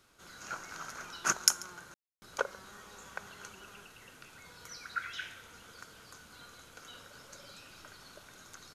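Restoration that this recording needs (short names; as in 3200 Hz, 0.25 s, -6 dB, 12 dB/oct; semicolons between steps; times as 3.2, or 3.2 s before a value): room tone fill 1.94–2.22; inverse comb 0.138 s -23 dB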